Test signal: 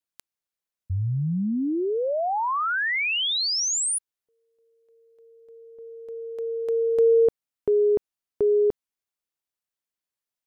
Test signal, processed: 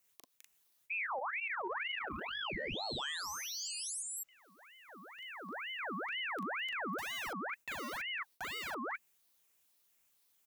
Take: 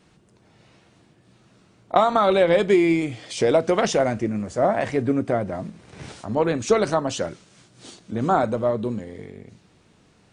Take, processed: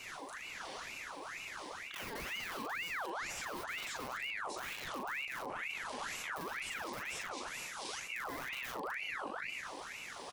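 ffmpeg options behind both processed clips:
-filter_complex "[0:a]aecho=1:1:208:0.158,asplit=2[a][b];[b]aeval=exprs='(mod(7.08*val(0)+1,2)-1)/7.08':c=same,volume=-9dB[c];[a][c]amix=inputs=2:normalize=0,acrossover=split=100|6000[d][e][f];[d]acompressor=threshold=-44dB:ratio=4[g];[e]acompressor=threshold=-31dB:ratio=4[h];[f]acompressor=threshold=-51dB:ratio=4[i];[g][h][i]amix=inputs=3:normalize=0,highshelf=f=5.8k:t=q:w=3:g=-6.5,asplit=2[j][k];[k]adelay=40,volume=-2dB[l];[j][l]amix=inputs=2:normalize=0,aeval=exprs='0.237*(cos(1*acos(clip(val(0)/0.237,-1,1)))-cos(1*PI/2))+0.0211*(cos(5*acos(clip(val(0)/0.237,-1,1)))-cos(5*PI/2))':c=same,firequalizer=gain_entry='entry(160,0);entry(230,-2);entry(380,6);entry(600,-21);entry(930,-2);entry(4300,-1);entry(8000,14)':delay=0.05:min_phase=1,alimiter=limit=-23dB:level=0:latency=1:release=290,areverse,acompressor=threshold=-41dB:ratio=6:attack=0.19:release=55:knee=6:detection=rms,areverse,aeval=exprs='val(0)*sin(2*PI*1600*n/s+1600*0.6/2.1*sin(2*PI*2.1*n/s))':c=same,volume=6.5dB"

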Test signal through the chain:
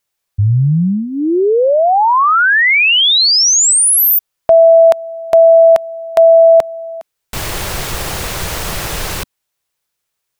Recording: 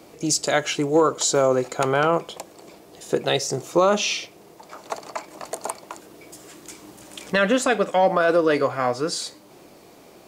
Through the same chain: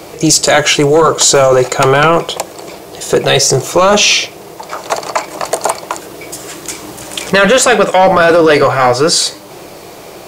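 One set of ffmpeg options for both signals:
-af "equalizer=f=250:t=o:w=0.39:g=-13,apsyclip=21dB,volume=-3dB"

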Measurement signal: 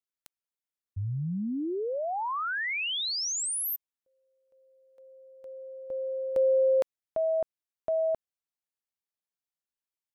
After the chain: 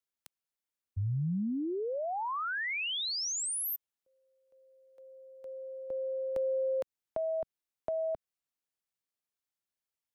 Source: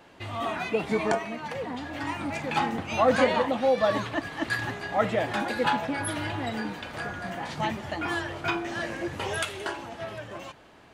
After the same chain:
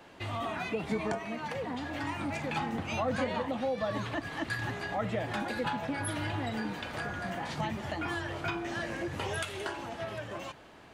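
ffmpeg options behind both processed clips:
-filter_complex "[0:a]acrossover=split=180[a][b];[b]acompressor=threshold=-34dB:ratio=2.5:attack=9.5:release=313:knee=2.83:detection=peak[c];[a][c]amix=inputs=2:normalize=0"

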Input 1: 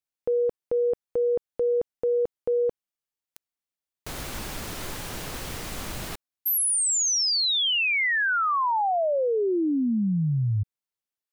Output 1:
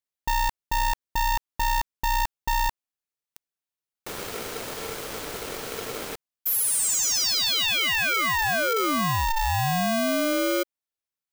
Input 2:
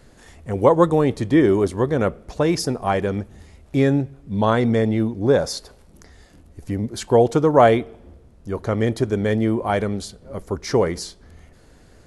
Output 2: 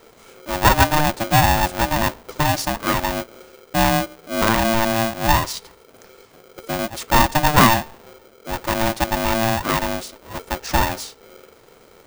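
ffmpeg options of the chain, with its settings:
-af "aeval=exprs='val(0)*sgn(sin(2*PI*450*n/s))':c=same"

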